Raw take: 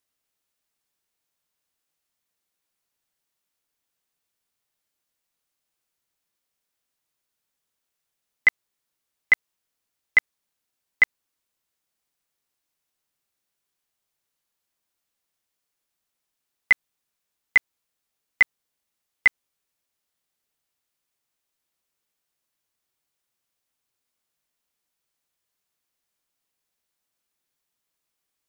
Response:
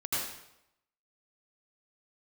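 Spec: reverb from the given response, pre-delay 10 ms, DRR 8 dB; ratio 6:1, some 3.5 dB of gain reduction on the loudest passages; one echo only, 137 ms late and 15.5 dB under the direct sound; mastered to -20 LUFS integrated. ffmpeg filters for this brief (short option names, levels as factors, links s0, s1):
-filter_complex "[0:a]acompressor=threshold=0.178:ratio=6,aecho=1:1:137:0.168,asplit=2[s0][s1];[1:a]atrim=start_sample=2205,adelay=10[s2];[s1][s2]afir=irnorm=-1:irlink=0,volume=0.188[s3];[s0][s3]amix=inputs=2:normalize=0,volume=1.88"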